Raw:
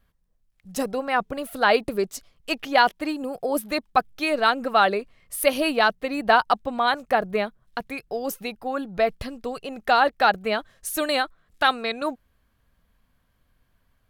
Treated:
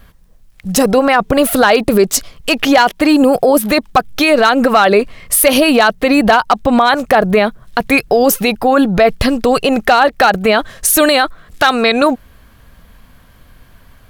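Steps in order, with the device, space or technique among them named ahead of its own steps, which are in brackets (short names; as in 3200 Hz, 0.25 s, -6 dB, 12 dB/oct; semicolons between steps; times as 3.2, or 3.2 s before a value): loud club master (compressor 2:1, threshold -24 dBFS, peak gain reduction 7 dB; hard clip -16 dBFS, distortion -22 dB; maximiser +24 dB); gain -1 dB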